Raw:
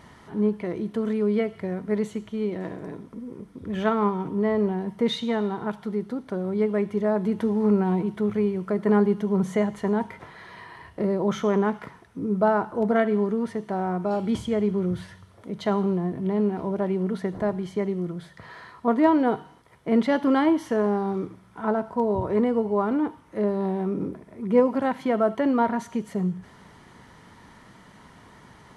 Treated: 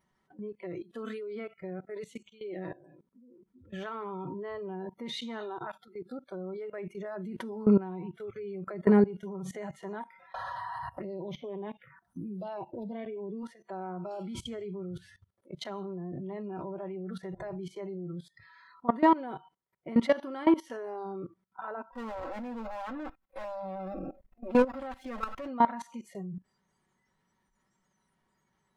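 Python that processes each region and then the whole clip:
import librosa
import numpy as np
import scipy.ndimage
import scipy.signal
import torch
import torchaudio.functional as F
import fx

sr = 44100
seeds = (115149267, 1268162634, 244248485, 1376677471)

y = fx.chain(x, sr, fx.env_phaser(low_hz=320.0, high_hz=1400.0, full_db=-22.5),
    fx.band_squash(depth_pct=70), at=(10.34, 13.43))
y = fx.chain(y, sr, fx.lower_of_two(delay_ms=3.8),
    fx.hum_notches(base_hz=50, count=4), at=(21.92, 25.48))
y = fx.noise_reduce_blind(y, sr, reduce_db=24)
y = y + 0.49 * np.pad(y, (int(5.3 * sr / 1000.0), 0))[:len(y)]
y = fx.level_steps(y, sr, step_db=19)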